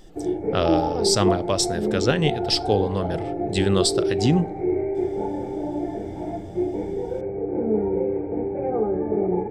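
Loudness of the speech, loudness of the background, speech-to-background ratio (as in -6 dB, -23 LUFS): -23.5 LUFS, -26.0 LUFS, 2.5 dB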